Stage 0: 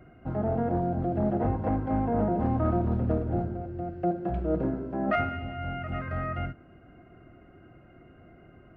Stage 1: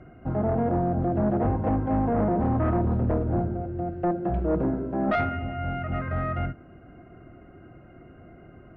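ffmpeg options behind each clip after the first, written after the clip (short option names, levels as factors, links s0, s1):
-af "aeval=exprs='0.2*sin(PI/2*1.78*val(0)/0.2)':c=same,aemphasis=mode=reproduction:type=75fm,volume=0.562"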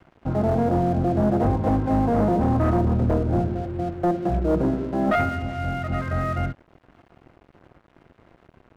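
-af "aeval=exprs='sgn(val(0))*max(abs(val(0))-0.00473,0)':c=same,volume=1.58"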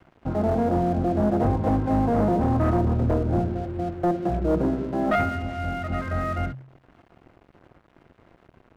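-af "bandreject=f=65.77:t=h:w=4,bandreject=f=131.54:t=h:w=4,bandreject=f=197.31:t=h:w=4,volume=0.891"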